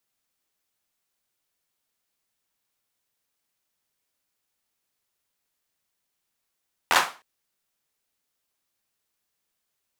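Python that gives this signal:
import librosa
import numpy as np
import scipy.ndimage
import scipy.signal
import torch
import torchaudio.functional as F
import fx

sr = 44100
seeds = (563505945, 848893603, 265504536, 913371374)

y = fx.drum_clap(sr, seeds[0], length_s=0.31, bursts=5, spacing_ms=12, hz=1100.0, decay_s=0.32)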